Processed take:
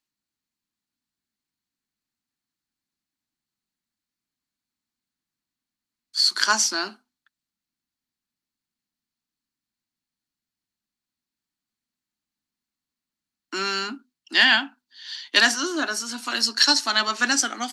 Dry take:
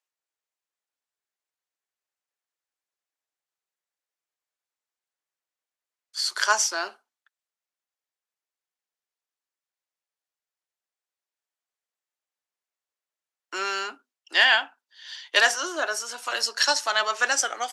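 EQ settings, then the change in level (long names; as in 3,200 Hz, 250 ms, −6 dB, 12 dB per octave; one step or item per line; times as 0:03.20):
low shelf with overshoot 350 Hz +12.5 dB, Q 3
parametric band 4,300 Hz +8 dB 0.29 octaves
+1.5 dB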